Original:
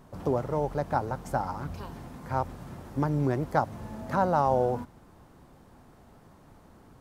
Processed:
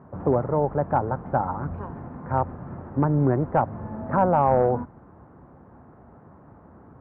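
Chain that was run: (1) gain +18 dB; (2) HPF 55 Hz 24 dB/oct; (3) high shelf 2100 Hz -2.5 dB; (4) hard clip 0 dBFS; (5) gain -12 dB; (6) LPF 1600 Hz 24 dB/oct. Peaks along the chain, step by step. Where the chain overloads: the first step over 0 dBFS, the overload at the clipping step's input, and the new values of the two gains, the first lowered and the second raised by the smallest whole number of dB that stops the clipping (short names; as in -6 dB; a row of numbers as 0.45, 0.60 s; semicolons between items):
+9.0, +9.0, +8.5, 0.0, -12.0, -10.5 dBFS; step 1, 8.5 dB; step 1 +9 dB, step 5 -3 dB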